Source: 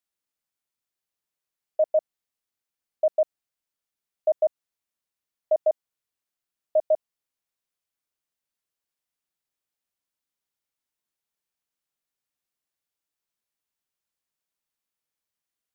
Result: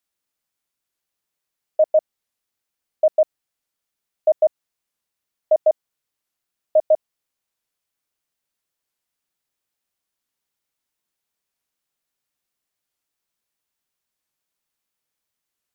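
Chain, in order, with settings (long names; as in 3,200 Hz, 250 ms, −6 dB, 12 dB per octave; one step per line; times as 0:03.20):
wow of a warped record 45 rpm, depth 160 cents
level +5.5 dB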